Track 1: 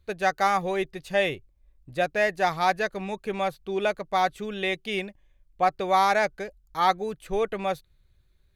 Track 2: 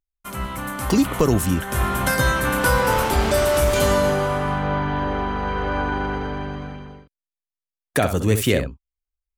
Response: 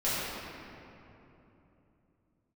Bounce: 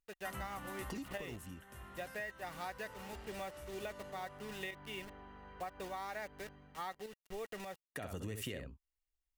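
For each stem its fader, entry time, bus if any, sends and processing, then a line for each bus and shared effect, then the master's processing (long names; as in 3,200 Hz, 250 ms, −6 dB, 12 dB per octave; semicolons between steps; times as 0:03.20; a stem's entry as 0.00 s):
−13.0 dB, 0.00 s, no send, bit reduction 6 bits; shaped tremolo saw up 1.7 Hz, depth 60%
−4.0 dB, 0.00 s, no send, downward compressor 1.5 to 1, threshold −26 dBFS, peak gain reduction 5 dB; automatic ducking −24 dB, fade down 1.70 s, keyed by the first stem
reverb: not used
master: hollow resonant body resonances 1,900/2,800 Hz, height 10 dB, ringing for 30 ms; downward compressor 12 to 1, threshold −39 dBFS, peak gain reduction 18 dB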